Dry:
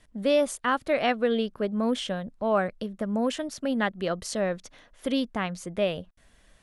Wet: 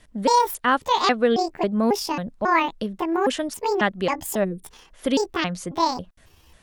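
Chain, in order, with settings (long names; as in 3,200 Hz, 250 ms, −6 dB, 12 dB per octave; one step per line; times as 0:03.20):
pitch shifter gated in a rhythm +8.5 semitones, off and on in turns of 272 ms
gain on a spectral selection 0:04.44–0:04.64, 510–8,100 Hz −27 dB
level +5.5 dB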